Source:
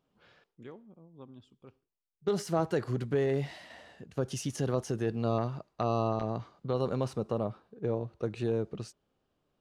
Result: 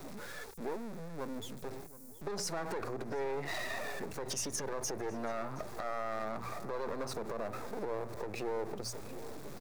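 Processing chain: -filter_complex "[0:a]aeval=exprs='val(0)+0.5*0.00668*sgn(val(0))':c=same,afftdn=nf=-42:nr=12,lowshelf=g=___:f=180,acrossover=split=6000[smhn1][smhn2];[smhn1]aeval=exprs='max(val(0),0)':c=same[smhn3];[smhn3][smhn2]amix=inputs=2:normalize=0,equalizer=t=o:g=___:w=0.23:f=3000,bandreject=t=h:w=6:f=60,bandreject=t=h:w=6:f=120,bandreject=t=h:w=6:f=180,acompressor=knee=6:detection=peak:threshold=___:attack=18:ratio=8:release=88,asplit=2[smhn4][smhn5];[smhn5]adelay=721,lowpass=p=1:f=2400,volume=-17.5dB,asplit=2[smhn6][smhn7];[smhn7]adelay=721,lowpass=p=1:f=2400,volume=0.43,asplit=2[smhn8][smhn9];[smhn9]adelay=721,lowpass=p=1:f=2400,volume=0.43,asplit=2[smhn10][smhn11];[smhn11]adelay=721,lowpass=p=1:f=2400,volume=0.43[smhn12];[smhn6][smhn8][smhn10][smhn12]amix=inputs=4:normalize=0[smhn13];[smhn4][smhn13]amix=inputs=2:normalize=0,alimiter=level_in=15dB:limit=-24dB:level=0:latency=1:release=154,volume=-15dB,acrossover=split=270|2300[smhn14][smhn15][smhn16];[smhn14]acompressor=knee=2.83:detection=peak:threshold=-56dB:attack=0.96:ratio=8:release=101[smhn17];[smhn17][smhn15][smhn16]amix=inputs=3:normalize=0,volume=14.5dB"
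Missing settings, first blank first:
-4.5, -10, -43dB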